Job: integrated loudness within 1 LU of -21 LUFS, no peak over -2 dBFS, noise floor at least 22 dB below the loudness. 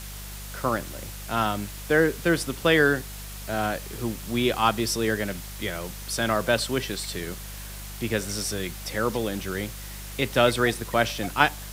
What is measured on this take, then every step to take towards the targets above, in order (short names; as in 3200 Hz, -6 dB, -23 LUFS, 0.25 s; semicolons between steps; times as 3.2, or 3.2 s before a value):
hum 50 Hz; harmonics up to 200 Hz; hum level -38 dBFS; noise floor -38 dBFS; noise floor target -48 dBFS; loudness -26.0 LUFS; peak -3.5 dBFS; loudness target -21.0 LUFS
-> de-hum 50 Hz, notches 4; denoiser 10 dB, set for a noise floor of -38 dBFS; gain +5 dB; limiter -2 dBFS